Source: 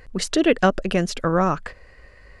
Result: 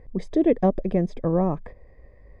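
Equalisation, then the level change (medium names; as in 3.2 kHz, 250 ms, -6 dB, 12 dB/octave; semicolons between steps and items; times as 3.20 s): boxcar filter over 31 samples; 0.0 dB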